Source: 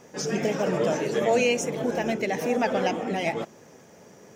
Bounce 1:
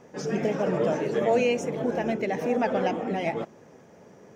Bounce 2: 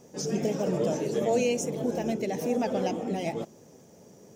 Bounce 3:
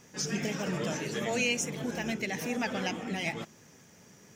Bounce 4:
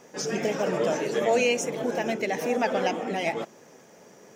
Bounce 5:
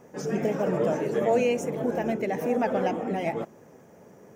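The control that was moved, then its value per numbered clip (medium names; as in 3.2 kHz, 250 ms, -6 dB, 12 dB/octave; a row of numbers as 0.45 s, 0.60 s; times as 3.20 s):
peaking EQ, frequency: 16 kHz, 1.7 kHz, 560 Hz, 64 Hz, 4.5 kHz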